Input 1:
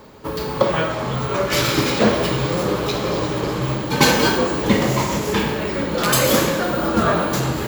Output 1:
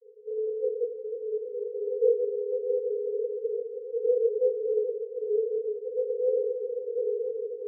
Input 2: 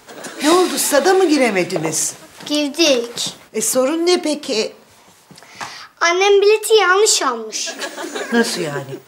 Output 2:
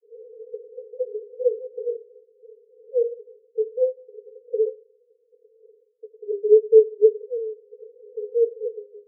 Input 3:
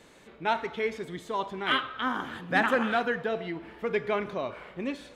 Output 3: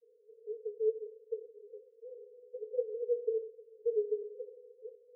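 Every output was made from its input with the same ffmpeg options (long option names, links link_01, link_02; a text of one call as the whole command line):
ffmpeg -i in.wav -af "asuperpass=centerf=460:order=20:qfactor=4.7" out.wav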